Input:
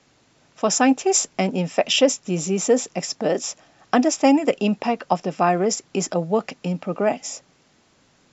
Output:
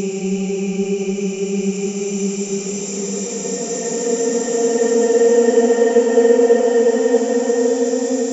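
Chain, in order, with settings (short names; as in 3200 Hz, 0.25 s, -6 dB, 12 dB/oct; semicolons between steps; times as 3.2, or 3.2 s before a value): transient shaper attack +4 dB, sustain -2 dB; Paulstretch 28×, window 0.25 s, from 2.5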